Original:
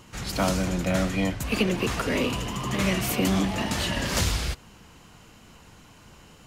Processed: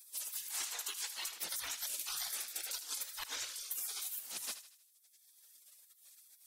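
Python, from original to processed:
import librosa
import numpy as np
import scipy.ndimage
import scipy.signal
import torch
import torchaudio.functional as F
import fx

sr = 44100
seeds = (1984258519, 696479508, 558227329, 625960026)

p1 = fx.dereverb_blind(x, sr, rt60_s=1.7)
p2 = fx.spec_gate(p1, sr, threshold_db=-30, keep='weak')
p3 = fx.high_shelf(p2, sr, hz=4100.0, db=10.5)
p4 = fx.hum_notches(p3, sr, base_hz=50, count=3)
p5 = fx.over_compress(p4, sr, threshold_db=-41.0, ratio=-0.5)
p6 = p5 + fx.echo_thinned(p5, sr, ms=78, feedback_pct=46, hz=890.0, wet_db=-11, dry=0)
y = F.gain(torch.from_numpy(p6), 1.0).numpy()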